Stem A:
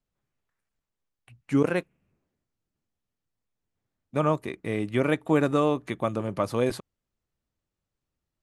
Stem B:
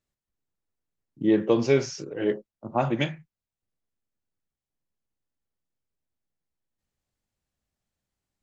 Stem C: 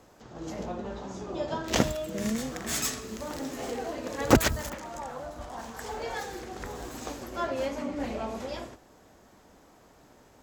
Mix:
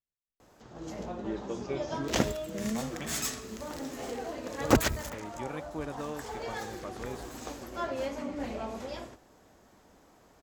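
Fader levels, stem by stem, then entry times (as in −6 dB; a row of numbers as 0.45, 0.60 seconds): −15.5, −16.0, −3.0 decibels; 0.45, 0.00, 0.40 seconds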